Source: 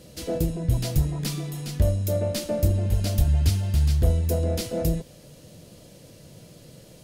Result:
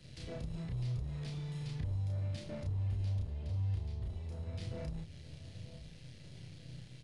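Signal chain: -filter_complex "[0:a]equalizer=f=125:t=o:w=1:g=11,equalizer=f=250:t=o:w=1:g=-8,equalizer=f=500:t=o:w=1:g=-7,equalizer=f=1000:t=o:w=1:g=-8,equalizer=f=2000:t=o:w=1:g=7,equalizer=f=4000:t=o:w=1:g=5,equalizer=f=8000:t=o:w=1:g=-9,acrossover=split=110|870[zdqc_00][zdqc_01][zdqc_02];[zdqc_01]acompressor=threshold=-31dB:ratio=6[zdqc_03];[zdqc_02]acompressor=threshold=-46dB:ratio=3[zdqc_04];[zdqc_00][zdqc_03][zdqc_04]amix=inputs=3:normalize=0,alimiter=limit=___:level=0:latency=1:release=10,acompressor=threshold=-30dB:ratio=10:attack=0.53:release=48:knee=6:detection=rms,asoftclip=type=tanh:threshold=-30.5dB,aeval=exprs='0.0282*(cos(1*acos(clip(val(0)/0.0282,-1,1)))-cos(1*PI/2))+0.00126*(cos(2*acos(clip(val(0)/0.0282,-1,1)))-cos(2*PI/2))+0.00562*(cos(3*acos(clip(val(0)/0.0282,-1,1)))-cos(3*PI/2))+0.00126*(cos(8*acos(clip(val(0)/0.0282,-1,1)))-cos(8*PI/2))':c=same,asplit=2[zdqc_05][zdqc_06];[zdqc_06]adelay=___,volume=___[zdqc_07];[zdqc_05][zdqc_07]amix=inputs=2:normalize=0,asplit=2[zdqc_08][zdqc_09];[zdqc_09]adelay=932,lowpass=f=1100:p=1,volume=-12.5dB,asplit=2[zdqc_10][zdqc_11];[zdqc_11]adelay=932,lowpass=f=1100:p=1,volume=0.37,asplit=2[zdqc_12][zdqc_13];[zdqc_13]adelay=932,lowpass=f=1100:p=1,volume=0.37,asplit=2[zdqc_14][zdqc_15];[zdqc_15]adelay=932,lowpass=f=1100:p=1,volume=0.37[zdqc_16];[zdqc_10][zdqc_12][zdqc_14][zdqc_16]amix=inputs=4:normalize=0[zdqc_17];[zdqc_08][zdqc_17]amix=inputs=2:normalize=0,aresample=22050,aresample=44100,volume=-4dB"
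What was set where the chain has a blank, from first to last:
-13.5dB, 32, -2dB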